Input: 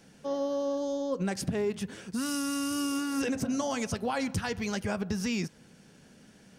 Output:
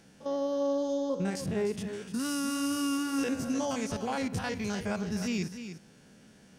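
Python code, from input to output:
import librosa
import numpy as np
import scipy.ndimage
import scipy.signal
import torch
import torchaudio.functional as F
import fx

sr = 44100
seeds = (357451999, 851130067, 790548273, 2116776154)

y = fx.spec_steps(x, sr, hold_ms=50)
y = y + 10.0 ** (-10.0 / 20.0) * np.pad(y, (int(299 * sr / 1000.0), 0))[:len(y)]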